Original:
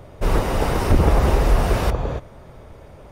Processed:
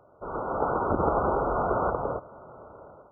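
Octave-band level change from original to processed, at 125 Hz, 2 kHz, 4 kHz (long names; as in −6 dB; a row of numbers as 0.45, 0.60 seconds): −16.0 dB, −9.0 dB, below −40 dB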